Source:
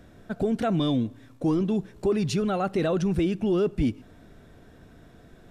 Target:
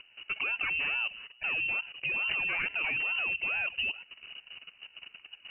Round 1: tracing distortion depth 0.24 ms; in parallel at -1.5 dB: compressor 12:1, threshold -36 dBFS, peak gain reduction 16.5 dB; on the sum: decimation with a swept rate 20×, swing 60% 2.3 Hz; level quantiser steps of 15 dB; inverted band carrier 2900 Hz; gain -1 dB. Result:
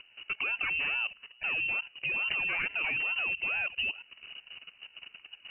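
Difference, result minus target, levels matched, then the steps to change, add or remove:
compressor: peak gain reduction +9.5 dB
change: compressor 12:1, threshold -25.5 dBFS, peak gain reduction 7 dB

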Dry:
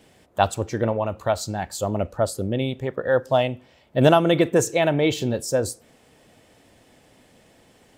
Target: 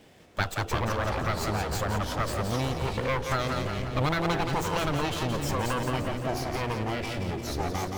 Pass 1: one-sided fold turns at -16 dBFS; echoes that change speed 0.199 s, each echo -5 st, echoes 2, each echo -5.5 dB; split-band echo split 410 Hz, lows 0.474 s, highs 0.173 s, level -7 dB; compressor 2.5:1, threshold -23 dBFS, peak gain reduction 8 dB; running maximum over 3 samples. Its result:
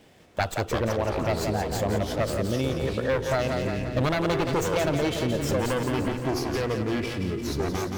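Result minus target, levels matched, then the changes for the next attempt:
one-sided fold: distortion -12 dB
change: one-sided fold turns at -25 dBFS

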